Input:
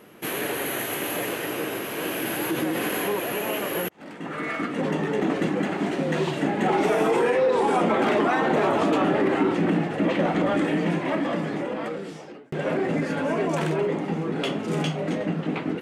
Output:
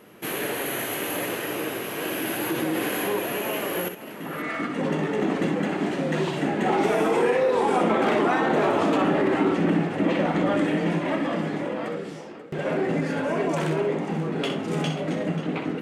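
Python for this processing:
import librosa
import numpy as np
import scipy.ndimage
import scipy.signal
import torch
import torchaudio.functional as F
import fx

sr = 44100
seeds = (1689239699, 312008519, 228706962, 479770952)

y = fx.echo_multitap(x, sr, ms=(63, 536), db=(-8.0, -14.0))
y = y * librosa.db_to_amplitude(-1.0)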